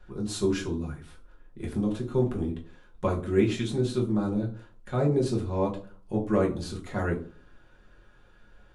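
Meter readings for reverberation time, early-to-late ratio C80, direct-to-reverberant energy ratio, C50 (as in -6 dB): 0.45 s, 16.0 dB, -1.5 dB, 11.5 dB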